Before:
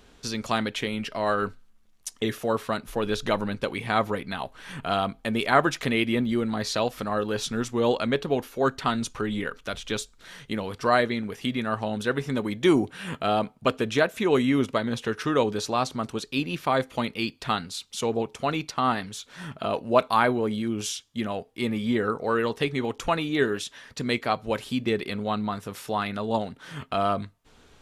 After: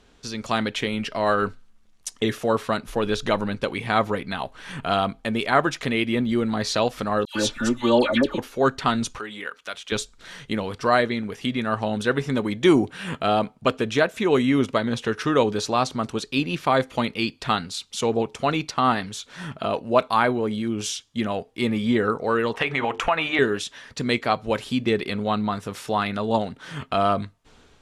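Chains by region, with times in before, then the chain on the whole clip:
0:07.25–0:08.38: comb filter 3.4 ms, depth 71% + all-pass dispersion lows, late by 101 ms, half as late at 1,600 Hz
0:09.18–0:09.92: high-pass filter 1,300 Hz 6 dB per octave + dynamic equaliser 5,500 Hz, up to −5 dB, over −51 dBFS, Q 0.8
0:22.54–0:23.39: flat-topped bell 1,300 Hz +12.5 dB 2.7 octaves + mains-hum notches 50/100/150/200/250/300/350/400/450 Hz + downward compressor 3 to 1, threshold −22 dBFS
whole clip: low-pass filter 10,000 Hz 12 dB per octave; automatic gain control gain up to 6 dB; level −2 dB

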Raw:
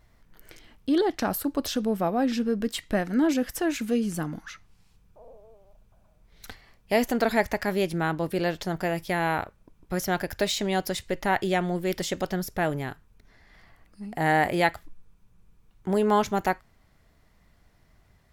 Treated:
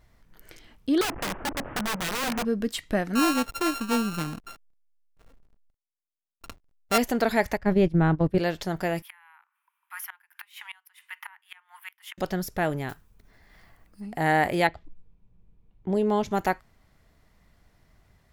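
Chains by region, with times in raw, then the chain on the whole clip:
0:01.01–0:02.45: linear delta modulator 16 kbit/s, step −30 dBFS + Bessel low-pass filter 1,100 Hz, order 4 + wrap-around overflow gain 23.5 dB
0:03.15–0:06.98: samples sorted by size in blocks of 32 samples + slack as between gear wheels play −40 dBFS
0:07.57–0:08.38: noise gate −30 dBFS, range −15 dB + RIAA equalisation playback
0:09.02–0:12.18: Butterworth high-pass 900 Hz 72 dB per octave + flat-topped bell 5,500 Hz −16 dB 1.3 octaves + gate with flip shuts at −25 dBFS, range −25 dB
0:12.89–0:14.02: one scale factor per block 5 bits + high-shelf EQ 10,000 Hz +8 dB + one half of a high-frequency compander decoder only
0:14.67–0:16.31: low-pass filter 3,300 Hz 6 dB per octave + low-pass that shuts in the quiet parts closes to 2,600 Hz, open at −19.5 dBFS + parametric band 1,400 Hz −11 dB 1.2 octaves
whole clip: no processing

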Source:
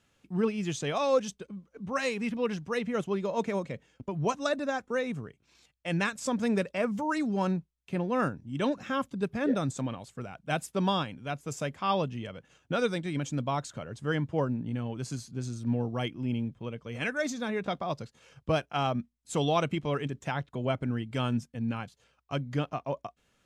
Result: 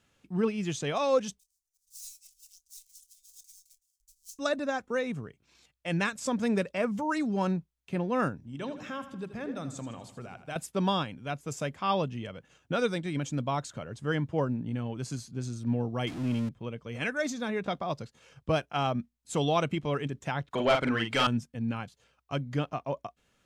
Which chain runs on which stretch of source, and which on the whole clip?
0:01.39–0:04.39: gap after every zero crossing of 0.098 ms + inverse Chebyshev band-stop filter 120–1,500 Hz, stop band 70 dB + double-tracking delay 27 ms −14 dB
0:08.36–0:10.56: mains-hum notches 50/100/150/200/250/300/350 Hz + downward compressor 2 to 1, threshold −39 dBFS + repeating echo 80 ms, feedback 51%, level −12 dB
0:16.07–0:16.49: converter with a step at zero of −37 dBFS + low-pass filter 9,800 Hz
0:20.51–0:21.27: tilt shelving filter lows −3.5 dB, about 910 Hz + mid-hump overdrive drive 20 dB, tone 3,200 Hz, clips at −14 dBFS + double-tracking delay 44 ms −5 dB
whole clip: no processing

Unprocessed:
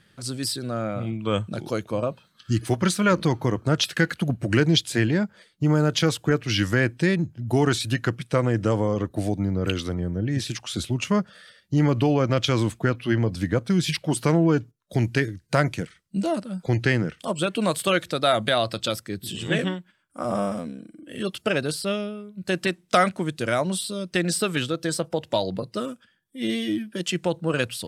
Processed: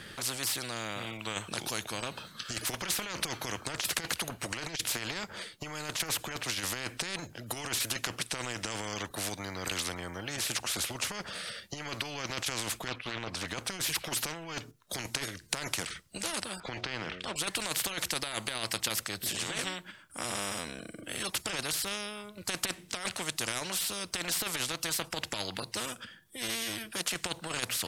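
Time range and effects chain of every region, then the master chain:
0:12.88–0:13.48: low-pass filter 2,800 Hz 6 dB per octave + downward expander −34 dBFS + highs frequency-modulated by the lows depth 0.32 ms
0:16.60–0:17.36: one scale factor per block 7 bits + low-pass filter 2,800 Hz + hum removal 90.57 Hz, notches 8
whole clip: dynamic equaliser 2,600 Hz, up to +6 dB, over −39 dBFS, Q 1.2; compressor whose output falls as the input rises −23 dBFS, ratio −0.5; every bin compressed towards the loudest bin 4 to 1

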